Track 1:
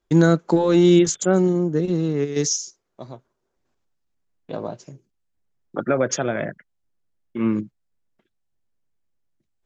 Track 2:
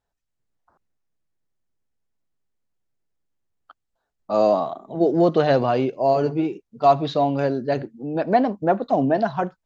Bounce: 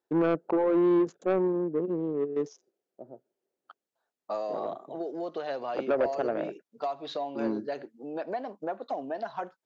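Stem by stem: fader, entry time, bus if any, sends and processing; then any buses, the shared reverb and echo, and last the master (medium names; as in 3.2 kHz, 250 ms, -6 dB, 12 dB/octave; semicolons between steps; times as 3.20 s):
0.0 dB, 0.00 s, no send, local Wiener filter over 41 samples; low-pass 1.1 kHz 12 dB/octave
-3.5 dB, 0.00 s, no send, compression 12:1, threshold -24 dBFS, peak gain reduction 14.5 dB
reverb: none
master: high-pass 400 Hz 12 dB/octave; saturation -18.5 dBFS, distortion -14 dB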